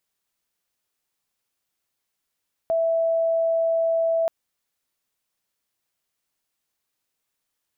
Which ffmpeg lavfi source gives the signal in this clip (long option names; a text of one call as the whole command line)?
ffmpeg -f lavfi -i "sine=frequency=659:duration=1.58:sample_rate=44100,volume=-0.44dB" out.wav